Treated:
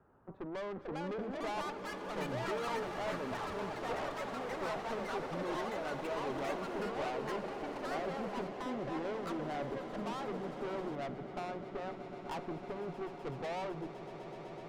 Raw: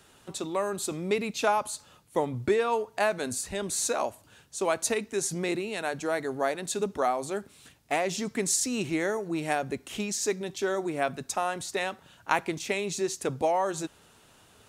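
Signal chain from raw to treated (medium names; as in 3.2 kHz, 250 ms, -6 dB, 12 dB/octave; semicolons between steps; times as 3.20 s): low-pass 1.3 kHz 24 dB/octave; valve stage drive 34 dB, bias 0.55; echo with a slow build-up 126 ms, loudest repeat 8, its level -15.5 dB; ever faster or slower copies 565 ms, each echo +6 st, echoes 3; trim -3.5 dB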